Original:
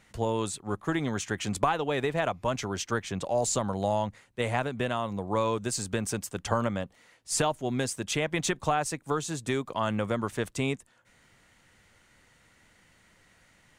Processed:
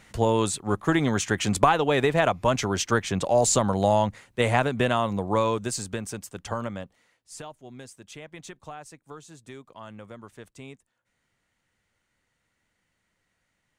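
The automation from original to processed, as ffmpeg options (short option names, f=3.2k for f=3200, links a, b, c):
-af "volume=6.5dB,afade=t=out:st=5:d=1.07:silence=0.316228,afade=t=out:st=6.82:d=0.52:silence=0.298538"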